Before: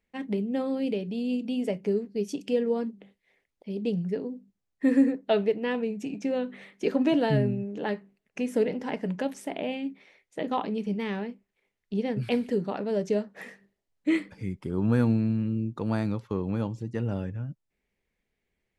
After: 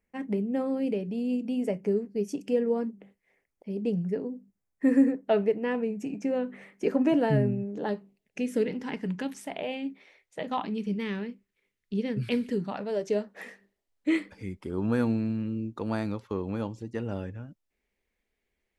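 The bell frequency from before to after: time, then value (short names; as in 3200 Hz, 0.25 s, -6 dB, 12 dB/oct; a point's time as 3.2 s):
bell -12 dB 0.68 oct
7.59 s 3700 Hz
8.73 s 620 Hz
9.33 s 620 Hz
9.89 s 110 Hz
10.86 s 740 Hz
12.48 s 740 Hz
13.17 s 140 Hz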